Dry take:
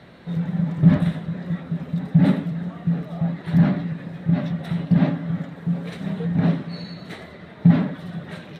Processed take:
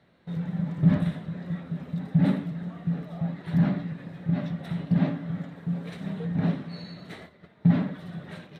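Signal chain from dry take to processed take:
flutter between parallel walls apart 9.8 metres, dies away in 0.22 s
noise gate −38 dBFS, range −10 dB
level −6 dB

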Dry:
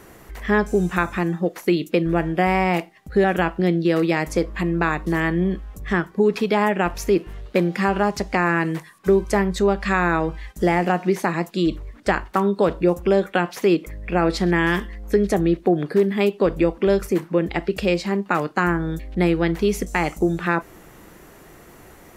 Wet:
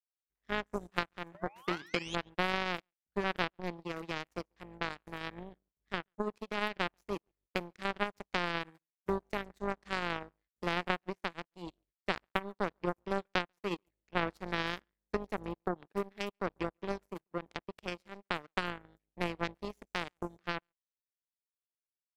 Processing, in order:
sound drawn into the spectrogram rise, 0:01.34–0:02.16, 560–3,500 Hz −22 dBFS
repeating echo 140 ms, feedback 17%, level −17 dB
power curve on the samples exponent 3
level −4.5 dB

